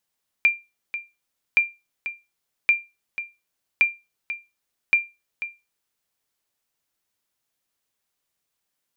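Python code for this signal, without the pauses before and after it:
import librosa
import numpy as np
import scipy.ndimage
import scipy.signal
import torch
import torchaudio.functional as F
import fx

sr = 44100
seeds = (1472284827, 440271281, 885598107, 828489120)

y = fx.sonar_ping(sr, hz=2380.0, decay_s=0.24, every_s=1.12, pings=5, echo_s=0.49, echo_db=-12.5, level_db=-9.0)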